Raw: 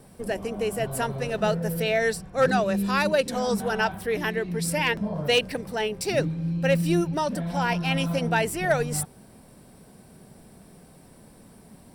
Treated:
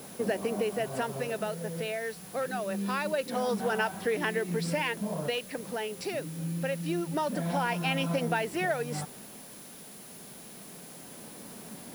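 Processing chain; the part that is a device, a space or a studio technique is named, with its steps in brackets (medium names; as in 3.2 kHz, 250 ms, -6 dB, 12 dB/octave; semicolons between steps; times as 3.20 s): medium wave at night (band-pass 190–4100 Hz; compression, threshold -32 dBFS, peak gain reduction 15 dB; tremolo 0.25 Hz, depth 49%; whistle 10 kHz -57 dBFS; white noise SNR 18 dB); trim +6 dB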